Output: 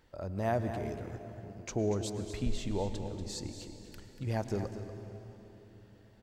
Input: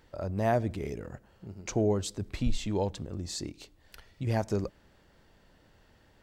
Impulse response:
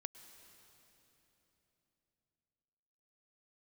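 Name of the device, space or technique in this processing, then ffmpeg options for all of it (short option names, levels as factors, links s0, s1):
cave: -filter_complex "[0:a]aecho=1:1:238:0.299[s0];[1:a]atrim=start_sample=2205[s1];[s0][s1]afir=irnorm=-1:irlink=0"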